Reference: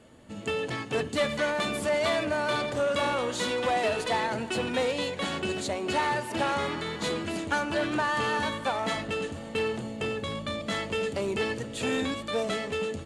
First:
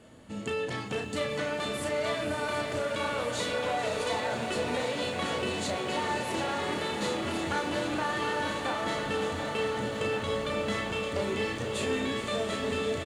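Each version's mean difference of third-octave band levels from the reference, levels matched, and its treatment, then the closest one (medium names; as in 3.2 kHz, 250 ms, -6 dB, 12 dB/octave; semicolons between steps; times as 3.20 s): 4.0 dB: compression, threshold -31 dBFS, peak gain reduction 9.5 dB; doubling 34 ms -5 dB; on a send: echo that smears into a reverb 543 ms, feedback 69%, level -7.5 dB; on the sum: bit-crushed delay 734 ms, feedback 80%, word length 10-bit, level -10 dB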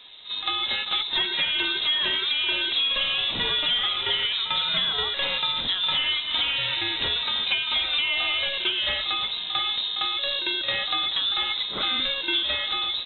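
14.5 dB: peaking EQ 1 kHz +2 dB; compression, threshold -29 dBFS, peak gain reduction 8 dB; reverse echo 49 ms -11 dB; frequency inversion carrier 3.9 kHz; trim +7 dB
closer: first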